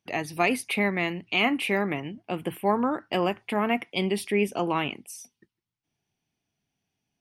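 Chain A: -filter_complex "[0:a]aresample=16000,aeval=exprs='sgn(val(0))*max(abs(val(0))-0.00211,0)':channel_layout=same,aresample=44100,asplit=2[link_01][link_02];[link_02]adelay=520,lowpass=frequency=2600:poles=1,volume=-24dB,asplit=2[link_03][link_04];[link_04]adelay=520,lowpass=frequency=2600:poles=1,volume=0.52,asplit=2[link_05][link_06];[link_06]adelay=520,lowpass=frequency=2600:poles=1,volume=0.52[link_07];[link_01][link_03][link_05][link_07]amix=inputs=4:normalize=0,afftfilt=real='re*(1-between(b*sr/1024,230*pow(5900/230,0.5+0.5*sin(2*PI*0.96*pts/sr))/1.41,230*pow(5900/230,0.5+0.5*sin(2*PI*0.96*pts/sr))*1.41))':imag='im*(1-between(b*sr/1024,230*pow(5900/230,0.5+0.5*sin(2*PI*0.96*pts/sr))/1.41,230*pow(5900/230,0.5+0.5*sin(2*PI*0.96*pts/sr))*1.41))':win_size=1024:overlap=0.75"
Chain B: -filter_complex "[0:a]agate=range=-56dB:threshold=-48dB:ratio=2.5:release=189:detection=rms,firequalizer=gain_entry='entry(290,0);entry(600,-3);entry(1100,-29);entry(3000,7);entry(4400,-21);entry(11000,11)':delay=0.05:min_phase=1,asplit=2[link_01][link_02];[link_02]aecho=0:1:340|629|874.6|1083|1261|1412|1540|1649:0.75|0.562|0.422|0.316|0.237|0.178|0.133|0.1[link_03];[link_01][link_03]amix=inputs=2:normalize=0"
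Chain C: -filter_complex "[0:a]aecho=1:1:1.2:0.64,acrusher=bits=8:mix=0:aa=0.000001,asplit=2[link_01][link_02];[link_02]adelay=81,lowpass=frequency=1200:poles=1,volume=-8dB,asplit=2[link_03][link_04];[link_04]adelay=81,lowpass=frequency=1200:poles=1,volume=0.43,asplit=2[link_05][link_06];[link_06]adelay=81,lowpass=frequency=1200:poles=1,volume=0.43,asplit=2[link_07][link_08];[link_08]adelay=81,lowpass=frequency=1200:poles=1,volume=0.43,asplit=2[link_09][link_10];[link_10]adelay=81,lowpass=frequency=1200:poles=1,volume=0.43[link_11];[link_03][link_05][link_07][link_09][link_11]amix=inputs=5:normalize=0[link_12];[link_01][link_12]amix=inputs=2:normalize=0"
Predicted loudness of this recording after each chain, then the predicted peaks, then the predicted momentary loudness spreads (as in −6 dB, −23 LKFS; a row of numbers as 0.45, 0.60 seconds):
−28.0, −25.5, −25.5 LKFS; −9.5, −7.5, −9.0 dBFS; 9, 11, 9 LU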